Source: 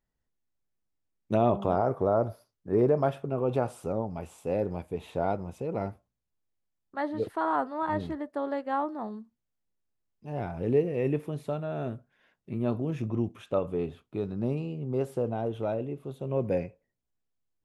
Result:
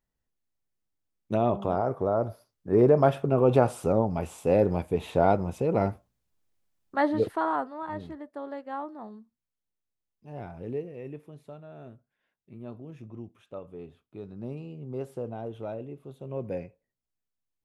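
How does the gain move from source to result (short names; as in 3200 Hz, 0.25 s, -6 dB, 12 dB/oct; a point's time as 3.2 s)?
2.17 s -1 dB
3.26 s +7 dB
7.12 s +7 dB
7.83 s -6 dB
10.52 s -6 dB
11.05 s -12.5 dB
13.68 s -12.5 dB
14.8 s -5.5 dB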